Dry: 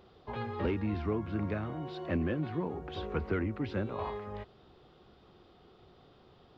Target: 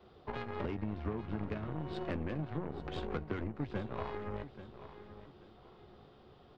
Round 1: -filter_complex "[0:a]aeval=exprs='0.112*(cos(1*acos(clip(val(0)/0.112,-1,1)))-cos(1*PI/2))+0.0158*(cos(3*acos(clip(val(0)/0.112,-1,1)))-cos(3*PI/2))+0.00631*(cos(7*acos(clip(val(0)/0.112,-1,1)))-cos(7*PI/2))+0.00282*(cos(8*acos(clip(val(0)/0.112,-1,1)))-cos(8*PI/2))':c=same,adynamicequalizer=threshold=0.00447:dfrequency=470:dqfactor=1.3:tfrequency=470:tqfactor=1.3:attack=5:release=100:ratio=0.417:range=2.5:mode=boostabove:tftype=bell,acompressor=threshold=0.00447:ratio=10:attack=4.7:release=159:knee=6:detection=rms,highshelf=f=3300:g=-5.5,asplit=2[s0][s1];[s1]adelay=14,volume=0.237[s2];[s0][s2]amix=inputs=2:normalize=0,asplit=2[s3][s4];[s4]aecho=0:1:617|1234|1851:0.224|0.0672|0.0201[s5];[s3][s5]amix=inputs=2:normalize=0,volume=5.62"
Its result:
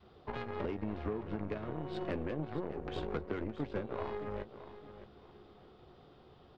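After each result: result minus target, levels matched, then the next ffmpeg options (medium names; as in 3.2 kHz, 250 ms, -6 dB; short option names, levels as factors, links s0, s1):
echo 217 ms early; 125 Hz band -3.0 dB
-filter_complex "[0:a]aeval=exprs='0.112*(cos(1*acos(clip(val(0)/0.112,-1,1)))-cos(1*PI/2))+0.0158*(cos(3*acos(clip(val(0)/0.112,-1,1)))-cos(3*PI/2))+0.00631*(cos(7*acos(clip(val(0)/0.112,-1,1)))-cos(7*PI/2))+0.00282*(cos(8*acos(clip(val(0)/0.112,-1,1)))-cos(8*PI/2))':c=same,adynamicequalizer=threshold=0.00447:dfrequency=470:dqfactor=1.3:tfrequency=470:tqfactor=1.3:attack=5:release=100:ratio=0.417:range=2.5:mode=boostabove:tftype=bell,acompressor=threshold=0.00447:ratio=10:attack=4.7:release=159:knee=6:detection=rms,highshelf=f=3300:g=-5.5,asplit=2[s0][s1];[s1]adelay=14,volume=0.237[s2];[s0][s2]amix=inputs=2:normalize=0,asplit=2[s3][s4];[s4]aecho=0:1:834|1668|2502:0.224|0.0672|0.0201[s5];[s3][s5]amix=inputs=2:normalize=0,volume=5.62"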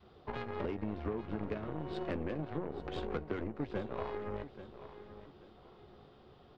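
125 Hz band -3.5 dB
-filter_complex "[0:a]aeval=exprs='0.112*(cos(1*acos(clip(val(0)/0.112,-1,1)))-cos(1*PI/2))+0.0158*(cos(3*acos(clip(val(0)/0.112,-1,1)))-cos(3*PI/2))+0.00631*(cos(7*acos(clip(val(0)/0.112,-1,1)))-cos(7*PI/2))+0.00282*(cos(8*acos(clip(val(0)/0.112,-1,1)))-cos(8*PI/2))':c=same,adynamicequalizer=threshold=0.00447:dfrequency=120:dqfactor=1.3:tfrequency=120:tqfactor=1.3:attack=5:release=100:ratio=0.417:range=2.5:mode=boostabove:tftype=bell,acompressor=threshold=0.00447:ratio=10:attack=4.7:release=159:knee=6:detection=rms,highshelf=f=3300:g=-5.5,asplit=2[s0][s1];[s1]adelay=14,volume=0.237[s2];[s0][s2]amix=inputs=2:normalize=0,asplit=2[s3][s4];[s4]aecho=0:1:834|1668|2502:0.224|0.0672|0.0201[s5];[s3][s5]amix=inputs=2:normalize=0,volume=5.62"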